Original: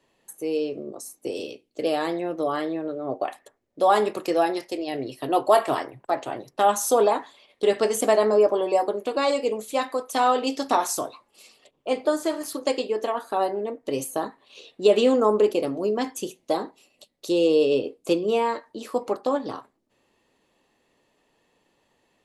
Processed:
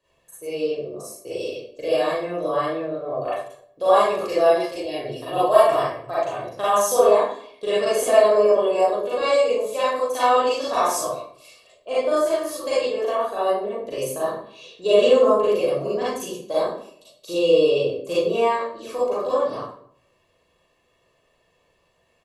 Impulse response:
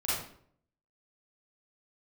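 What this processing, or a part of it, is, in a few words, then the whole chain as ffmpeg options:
microphone above a desk: -filter_complex "[0:a]aecho=1:1:1.8:0.53[s0];[1:a]atrim=start_sample=2205[s1];[s0][s1]afir=irnorm=-1:irlink=0,volume=0.531"

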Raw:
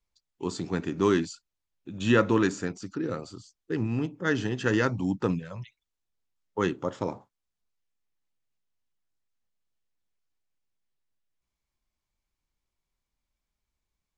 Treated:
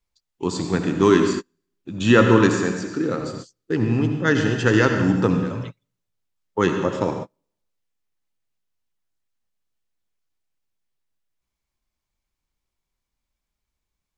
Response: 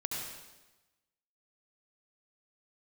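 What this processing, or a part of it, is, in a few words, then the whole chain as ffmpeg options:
keyed gated reverb: -filter_complex "[0:a]asettb=1/sr,asplit=3[s0][s1][s2];[s0]atrim=end=2.654[s3];[s1]atrim=start=2.65:end=3.21,asetpts=PTS-STARTPTS,afade=t=in:d=0.004:c=qsin,afade=t=out:st=0.556:d=0.004:c=qsin,highpass=120[s4];[s2]atrim=start=3.206[s5];[s3][s4]acrossfade=d=0.004:c1=hsin:c2=qsin[s6];[s6][s5]acrossfade=d=0.004:c1=qsin:c2=hsin,asplit=3[s7][s8][s9];[1:a]atrim=start_sample=2205[s10];[s8][s10]afir=irnorm=-1:irlink=0[s11];[s9]apad=whole_len=624914[s12];[s11][s12]sidechaingate=range=0.0112:threshold=0.00631:ratio=16:detection=peak,volume=0.841[s13];[s7][s13]amix=inputs=2:normalize=0,volume=1.33"

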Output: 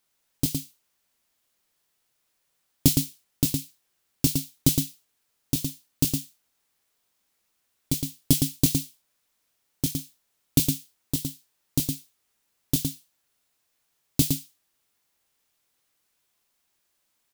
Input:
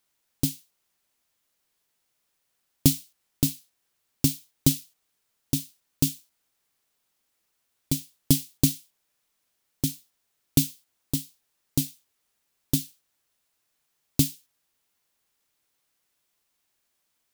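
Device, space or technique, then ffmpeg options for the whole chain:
slapback doubling: -filter_complex "[0:a]asplit=3[s0][s1][s2];[s1]adelay=24,volume=0.398[s3];[s2]adelay=113,volume=0.562[s4];[s0][s3][s4]amix=inputs=3:normalize=0"

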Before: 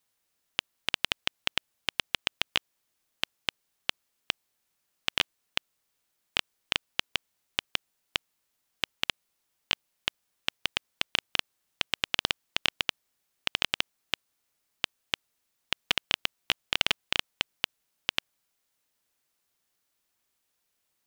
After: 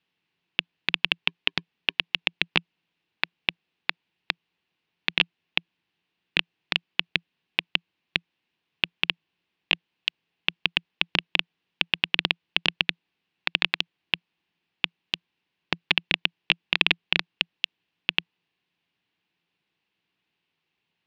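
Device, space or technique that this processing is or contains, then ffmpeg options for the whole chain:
ring modulator pedal into a guitar cabinet: -filter_complex "[0:a]asettb=1/sr,asplit=3[s0][s1][s2];[s0]atrim=end=1.194[s3];[s1]atrim=start=1.19:end=2,asetpts=PTS-STARTPTS,afade=t=in:d=0.004:c=qsin,afade=t=out:st=0.806:d=0.004:c=qsin,highpass=f=53:w=0.5412,highpass=f=53:w=1.3066[s4];[s2]atrim=start=1.996[s5];[s3][s4]acrossfade=d=0.004:c1=hsin:c2=qsin[s6];[s6][s5]acrossfade=d=0.004:c1=qsin:c2=hsin,aeval=exprs='val(0)*sgn(sin(2*PI*340*n/s))':c=same,highpass=81,equalizer=f=170:t=q:w=4:g=10,equalizer=f=330:t=q:w=4:g=4,equalizer=f=590:t=q:w=4:g=-8,equalizer=f=1300:t=q:w=4:g=-6,equalizer=f=2700:t=q:w=4:g=6,lowpass=f=3800:w=0.5412,lowpass=f=3800:w=1.3066,volume=1.5"

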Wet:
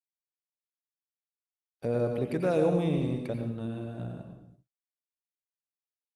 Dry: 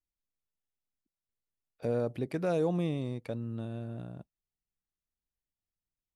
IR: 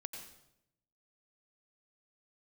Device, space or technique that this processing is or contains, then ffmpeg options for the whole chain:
speakerphone in a meeting room: -filter_complex "[1:a]atrim=start_sample=2205[s0];[0:a][s0]afir=irnorm=-1:irlink=0,dynaudnorm=f=590:g=5:m=3.98,agate=range=0.00447:threshold=0.00282:ratio=16:detection=peak,volume=0.562" -ar 48000 -c:a libopus -b:a 32k

